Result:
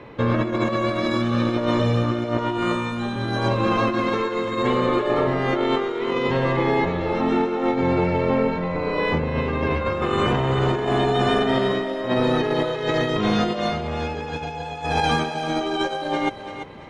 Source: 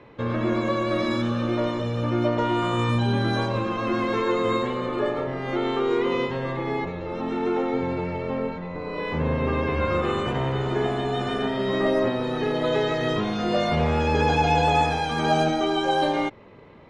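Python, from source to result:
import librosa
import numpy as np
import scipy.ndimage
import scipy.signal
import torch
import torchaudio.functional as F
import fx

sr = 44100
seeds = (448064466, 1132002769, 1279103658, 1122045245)

y = fx.over_compress(x, sr, threshold_db=-26.0, ratio=-0.5)
y = fx.doubler(y, sr, ms=29.0, db=-3, at=(2.55, 3.16))
y = fx.echo_thinned(y, sr, ms=339, feedback_pct=32, hz=470.0, wet_db=-9)
y = y * 10.0 ** (4.5 / 20.0)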